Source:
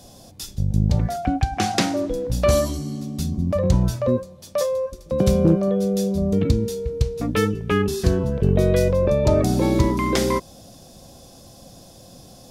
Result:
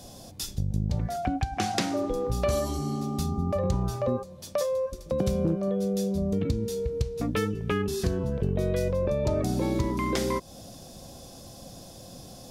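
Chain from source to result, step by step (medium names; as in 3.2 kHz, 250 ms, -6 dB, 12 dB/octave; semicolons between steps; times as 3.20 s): compression 2.5:1, threshold -27 dBFS, peak gain reduction 10.5 dB; 1.91–4.22 s: mains buzz 400 Hz, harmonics 3, -39 dBFS -2 dB/octave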